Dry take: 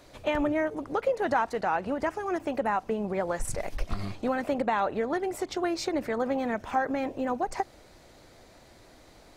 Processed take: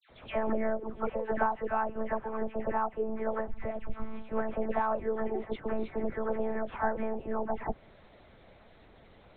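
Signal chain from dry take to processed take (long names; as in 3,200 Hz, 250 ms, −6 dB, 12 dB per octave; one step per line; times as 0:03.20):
treble cut that deepens with the level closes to 1,600 Hz, closed at −27.5 dBFS
one-pitch LPC vocoder at 8 kHz 220 Hz
all-pass dispersion lows, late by 97 ms, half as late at 1,700 Hz
level −2 dB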